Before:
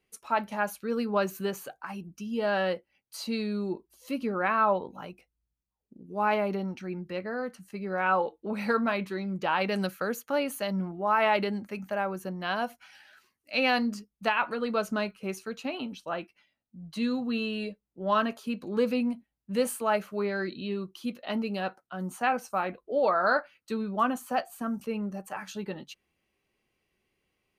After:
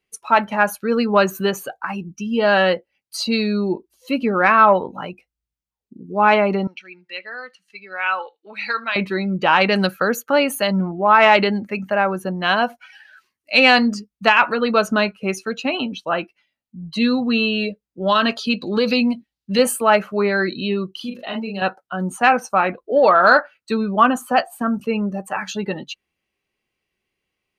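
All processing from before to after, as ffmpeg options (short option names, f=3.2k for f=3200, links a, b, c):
-filter_complex "[0:a]asettb=1/sr,asplit=3[a][b][c];[a]atrim=end=6.674[d];[b]atrim=start=6.67:end=8.96,asetpts=PTS-STARTPTS,afade=t=in:d=0.004:c=qsin,afade=t=out:st=2.286:d=0.004:c=qsin,bandpass=f=3.4k:t=q:w=1,aecho=1:1:78:0.0891,atrim=end_sample=100989[e];[c]atrim=start=8.956[f];[d][e]acrossfade=d=0.004:c1=hsin:c2=qsin[g];[g][f]acrossfade=d=0.004:c1=qsin:c2=hsin,asettb=1/sr,asplit=3[h][i][j];[h]atrim=end=18.024[k];[i]atrim=start=18.02:end=19.59,asetpts=PTS-STARTPTS,afade=t=in:d=0.004:c=qsin,afade=t=out:st=1.566:d=0.004:c=qsin,equalizer=f=4.3k:w=1.1:g=10,acompressor=threshold=-24dB:ratio=5:attack=3.2:release=140:knee=1:detection=peak[l];[j]atrim=start=19.586[m];[k][l]acrossfade=d=0.004:c1=hsin:c2=qsin[n];[n][m]acrossfade=d=0.004:c1=qsin:c2=hsin,asettb=1/sr,asplit=3[o][p][q];[o]atrim=end=20.914[r];[p]atrim=start=20.91:end=21.62,asetpts=PTS-STARTPTS,afade=t=in:d=0.004:c=qsin,afade=t=out:st=0.706:d=0.004:c=qsin,acompressor=threshold=-39dB:ratio=3:attack=3.2:release=140:knee=1:detection=peak,asplit=2[s][t];[t]adelay=41,volume=-3dB[u];[s][u]amix=inputs=2:normalize=0,atrim=end_sample=31311[v];[q]atrim=start=21.616[w];[r][v]acrossfade=d=0.004:c1=hsin:c2=qsin[x];[x][w]acrossfade=d=0.004:c1=qsin:c2=hsin,afftdn=nr=14:nf=-48,equalizer=f=3.2k:w=0.42:g=4.5,acontrast=53,volume=4.5dB"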